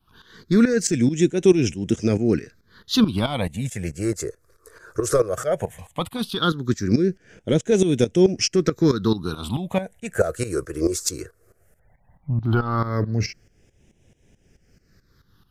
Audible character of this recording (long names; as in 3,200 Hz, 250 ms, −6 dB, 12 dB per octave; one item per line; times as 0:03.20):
phaser sweep stages 6, 0.16 Hz, lowest notch 210–1,200 Hz
tremolo saw up 4.6 Hz, depth 80%